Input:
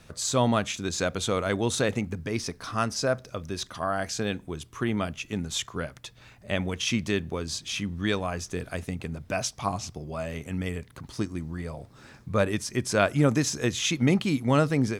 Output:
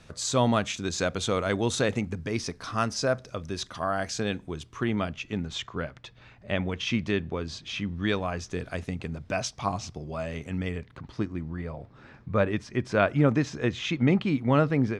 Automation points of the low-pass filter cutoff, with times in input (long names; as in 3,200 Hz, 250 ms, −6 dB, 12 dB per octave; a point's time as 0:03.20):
0:04.29 7,900 Hz
0:05.57 3,600 Hz
0:07.75 3,600 Hz
0:08.68 6,100 Hz
0:10.43 6,100 Hz
0:11.18 2,800 Hz